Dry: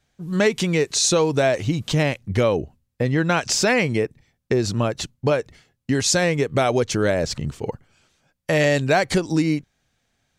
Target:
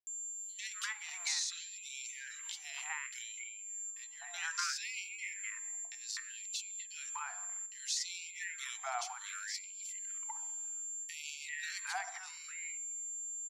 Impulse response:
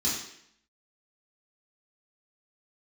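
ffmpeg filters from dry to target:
-filter_complex "[0:a]acrossover=split=160|5600[a][b][c];[c]alimiter=limit=-21.5dB:level=0:latency=1:release=282[d];[a][b][d]amix=inputs=3:normalize=0,highpass=f=87:w=0.5412,highpass=f=87:w=1.3066,bandreject=f=60:t=h:w=6,bandreject=f=120:t=h:w=6,bandreject=f=180:t=h:w=6,bandreject=f=240:t=h:w=6,asplit=2[e][f];[1:a]atrim=start_sample=2205,lowpass=2.2k[g];[f][g]afir=irnorm=-1:irlink=0,volume=-16.5dB[h];[e][h]amix=inputs=2:normalize=0,aeval=exprs='val(0)+0.02*sin(2*PI*7300*n/s)':c=same,atempo=0.77,acrossover=split=440|2400[i][j][k];[k]adelay=70[l];[j]adelay=320[m];[i][m][l]amix=inputs=3:normalize=0,acompressor=threshold=-28dB:ratio=3,afftfilt=real='re*gte(b*sr/1024,650*pow(2200/650,0.5+0.5*sin(2*PI*0.64*pts/sr)))':imag='im*gte(b*sr/1024,650*pow(2200/650,0.5+0.5*sin(2*PI*0.64*pts/sr)))':win_size=1024:overlap=0.75,volume=-5.5dB"

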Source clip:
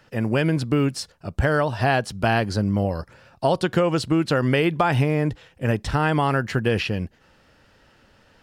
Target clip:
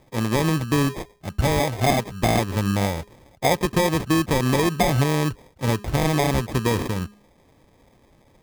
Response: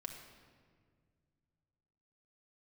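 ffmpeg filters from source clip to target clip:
-af "bandreject=f=206.9:t=h:w=4,bandreject=f=413.8:t=h:w=4,acrusher=samples=31:mix=1:aa=0.000001,atempo=1"

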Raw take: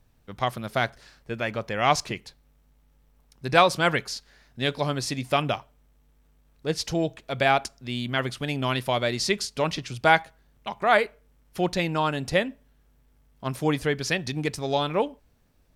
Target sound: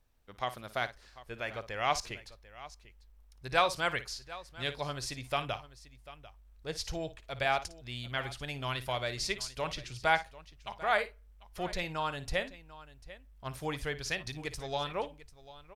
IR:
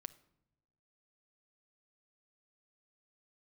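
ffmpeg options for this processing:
-af "equalizer=f=150:w=0.6:g=-8.5,aecho=1:1:56|744:0.188|0.133,asubboost=boost=6:cutoff=98,volume=-7.5dB"

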